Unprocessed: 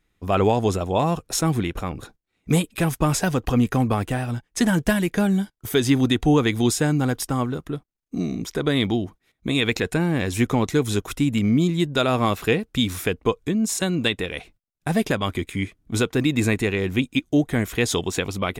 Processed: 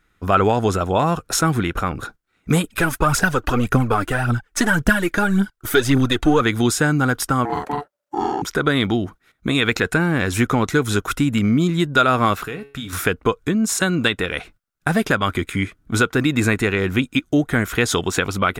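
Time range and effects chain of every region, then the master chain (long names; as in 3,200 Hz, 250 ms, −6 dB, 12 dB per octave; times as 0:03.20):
0:02.64–0:06.41: gain on one half-wave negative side −3 dB + phase shifter 1.8 Hz, delay 3.6 ms, feedback 57%
0:07.45–0:08.42: double-tracking delay 47 ms −2.5 dB + ring modulation 580 Hz
0:12.43–0:12.93: downward compressor 3 to 1, threshold −24 dBFS + tuned comb filter 140 Hz, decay 0.41 s, mix 70%
whole clip: parametric band 1,400 Hz +12 dB 0.53 octaves; downward compressor 1.5 to 1, threshold −24 dBFS; level +5 dB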